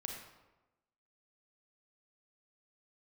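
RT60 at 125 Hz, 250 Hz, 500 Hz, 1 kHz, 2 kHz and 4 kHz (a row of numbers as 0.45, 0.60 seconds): 1.1, 1.1, 1.1, 1.0, 0.85, 0.70 seconds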